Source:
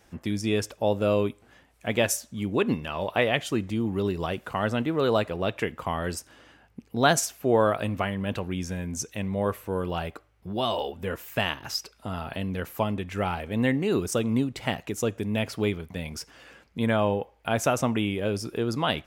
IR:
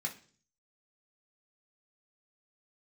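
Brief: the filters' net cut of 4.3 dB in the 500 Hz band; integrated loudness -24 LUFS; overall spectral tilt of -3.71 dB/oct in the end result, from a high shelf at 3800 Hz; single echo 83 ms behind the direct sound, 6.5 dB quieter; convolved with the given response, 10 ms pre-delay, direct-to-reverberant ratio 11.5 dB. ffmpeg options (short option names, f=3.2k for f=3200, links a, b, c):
-filter_complex "[0:a]equalizer=f=500:t=o:g=-5.5,highshelf=f=3.8k:g=6.5,aecho=1:1:83:0.473,asplit=2[a][b];[1:a]atrim=start_sample=2205,adelay=10[c];[b][c]afir=irnorm=-1:irlink=0,volume=-12.5dB[d];[a][d]amix=inputs=2:normalize=0,volume=3dB"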